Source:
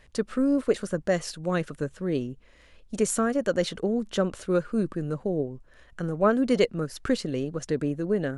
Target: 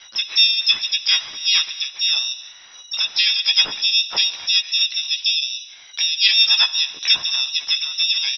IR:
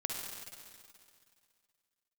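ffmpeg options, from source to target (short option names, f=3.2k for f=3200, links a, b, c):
-filter_complex "[0:a]asplit=2[a][b];[b]acompressor=threshold=-34dB:ratio=10,volume=0.5dB[c];[a][c]amix=inputs=2:normalize=0,lowpass=f=3.3k:t=q:w=0.5098,lowpass=f=3.3k:t=q:w=0.6013,lowpass=f=3.3k:t=q:w=0.9,lowpass=f=3.3k:t=q:w=2.563,afreqshift=-3900,tremolo=f=2.5:d=0.29,asplit=2[d][e];[e]adelay=14,volume=-5dB[f];[d][f]amix=inputs=2:normalize=0,asplit=2[g][h];[1:a]atrim=start_sample=2205,afade=t=out:st=0.38:d=0.01,atrim=end_sample=17199[i];[h][i]afir=irnorm=-1:irlink=0,volume=-11.5dB[j];[g][j]amix=inputs=2:normalize=0,asplit=3[k][l][m];[l]asetrate=33038,aresample=44100,atempo=1.33484,volume=-8dB[n];[m]asetrate=66075,aresample=44100,atempo=0.66742,volume=-2dB[o];[k][n][o]amix=inputs=3:normalize=0,volume=1dB"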